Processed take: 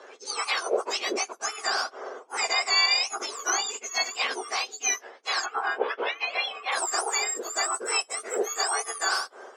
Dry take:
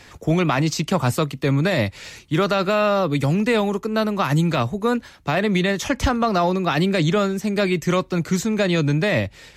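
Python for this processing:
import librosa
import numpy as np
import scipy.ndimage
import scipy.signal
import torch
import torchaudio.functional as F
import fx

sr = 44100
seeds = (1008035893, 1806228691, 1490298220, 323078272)

y = fx.octave_mirror(x, sr, pivot_hz=1700.0)
y = fx.cheby1_bandpass(y, sr, low_hz=390.0, high_hz=fx.steps((0.0, 6600.0), (5.44, 3100.0), (6.71, 8500.0)), order=3)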